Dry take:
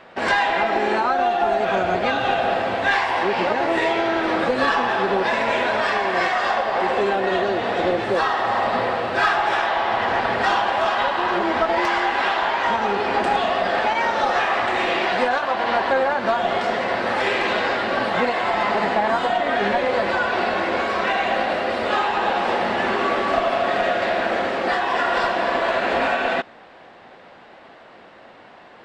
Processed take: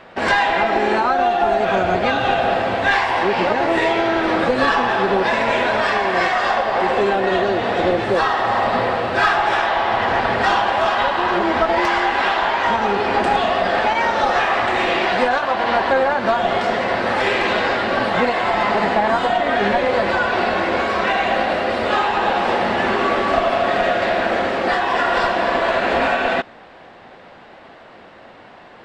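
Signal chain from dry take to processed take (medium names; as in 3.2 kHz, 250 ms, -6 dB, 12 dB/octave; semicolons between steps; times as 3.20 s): bass shelf 130 Hz +6.5 dB; trim +2.5 dB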